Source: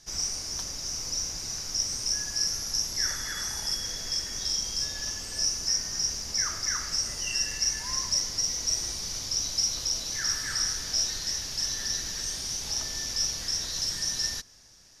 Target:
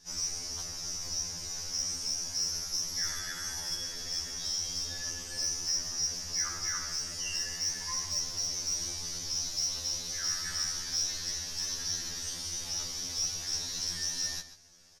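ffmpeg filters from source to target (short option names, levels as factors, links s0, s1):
-filter_complex "[0:a]aeval=exprs='0.211*(cos(1*acos(clip(val(0)/0.211,-1,1)))-cos(1*PI/2))+0.0119*(cos(5*acos(clip(val(0)/0.211,-1,1)))-cos(5*PI/2))':c=same,asplit=2[s0][s1];[s1]adelay=139.9,volume=0.251,highshelf=f=4000:g=-3.15[s2];[s0][s2]amix=inputs=2:normalize=0,afftfilt=real='re*2*eq(mod(b,4),0)':imag='im*2*eq(mod(b,4),0)':win_size=2048:overlap=0.75,volume=0.668"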